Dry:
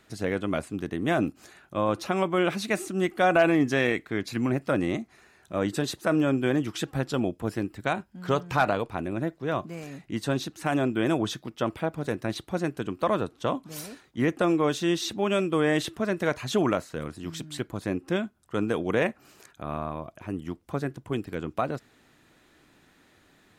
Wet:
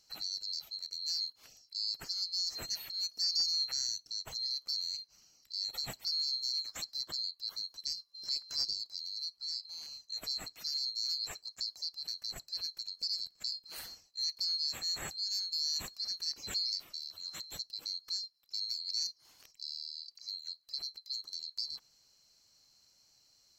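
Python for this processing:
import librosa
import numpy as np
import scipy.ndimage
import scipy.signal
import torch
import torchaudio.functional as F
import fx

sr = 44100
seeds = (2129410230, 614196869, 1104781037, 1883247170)

y = fx.band_swap(x, sr, width_hz=4000)
y = fx.dynamic_eq(y, sr, hz=5500.0, q=0.73, threshold_db=-33.0, ratio=4.0, max_db=-5)
y = y * 10.0 ** (-7.0 / 20.0)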